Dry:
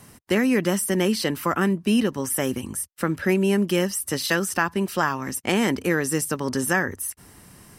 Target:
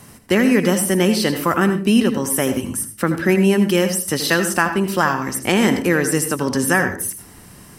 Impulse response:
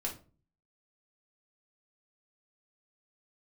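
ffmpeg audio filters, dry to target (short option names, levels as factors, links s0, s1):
-filter_complex "[0:a]asplit=2[s0][s1];[1:a]atrim=start_sample=2205,adelay=79[s2];[s1][s2]afir=irnorm=-1:irlink=0,volume=0.299[s3];[s0][s3]amix=inputs=2:normalize=0,volume=1.78"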